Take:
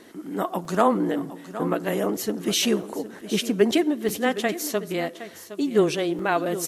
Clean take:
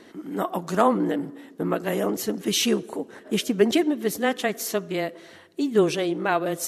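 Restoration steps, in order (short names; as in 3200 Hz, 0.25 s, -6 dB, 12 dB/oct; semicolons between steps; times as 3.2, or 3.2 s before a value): interpolate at 0.65/2.83/3.21/4.09/6.19, 2.7 ms; expander -34 dBFS, range -21 dB; inverse comb 0.764 s -13.5 dB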